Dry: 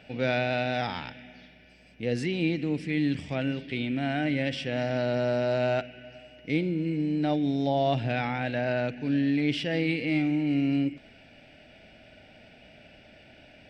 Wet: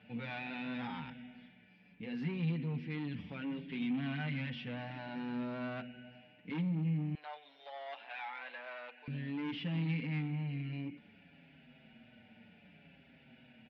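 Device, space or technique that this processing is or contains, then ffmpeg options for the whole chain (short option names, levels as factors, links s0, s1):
barber-pole flanger into a guitar amplifier: -filter_complex "[0:a]asplit=2[s0][s1];[s1]adelay=6.3,afreqshift=-0.65[s2];[s0][s2]amix=inputs=2:normalize=1,asoftclip=type=tanh:threshold=0.0335,highpass=88,equalizer=f=160:t=q:w=4:g=8,equalizer=f=230:t=q:w=4:g=9,equalizer=f=340:t=q:w=4:g=-5,equalizer=f=630:t=q:w=4:g=-8,equalizer=f=970:t=q:w=4:g=4,lowpass=f=3500:w=0.5412,lowpass=f=3500:w=1.3066,asettb=1/sr,asplit=3[s3][s4][s5];[s3]atrim=end=3.824[s6];[s4]atrim=start=3.82:end=4.46,asetpts=PTS-STARTPTS,afade=t=in:d=0.004:c=qsin,afade=t=out:st=0.636:d=0.004:c=qsin,equalizer=f=4300:w=0.59:g=4.5[s7];[s5]atrim=start=4.456[s8];[s6][s7]acrossfade=d=0.004:c1=hsin:c2=qsin[s9];[s9][s8]acrossfade=d=0.004:c1=qsin:c2=hsin,asettb=1/sr,asplit=3[s10][s11][s12];[s10]atrim=end=7.154[s13];[s11]atrim=start=7.15:end=9.08,asetpts=PTS-STARTPTS,afade=t=in:d=0.004:c=qsin,afade=t=out:st=1.926:d=0.004:c=qsin,highpass=f=590:w=0.5412,highpass=f=590:w=1.3066[s14];[s12]atrim=start=9.076[s15];[s13][s14]acrossfade=d=0.004:c1=hsin:c2=qsin[s16];[s16][s15]acrossfade=d=0.004:c1=qsin:c2=hsin,volume=0.531"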